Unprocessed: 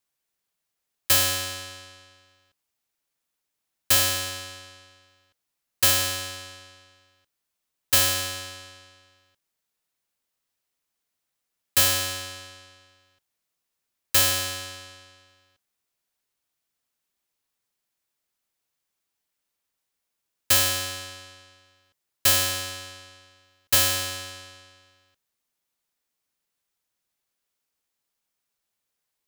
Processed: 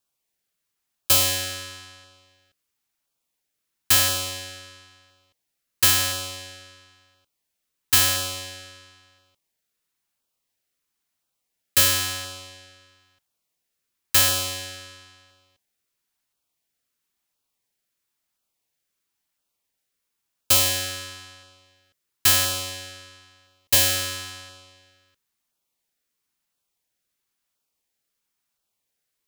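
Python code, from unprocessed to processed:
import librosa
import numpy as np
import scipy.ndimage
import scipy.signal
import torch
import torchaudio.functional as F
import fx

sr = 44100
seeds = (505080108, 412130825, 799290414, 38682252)

y = fx.filter_lfo_notch(x, sr, shape='saw_down', hz=0.98, low_hz=390.0, high_hz=2200.0, q=2.5)
y = F.gain(torch.from_numpy(y), 2.0).numpy()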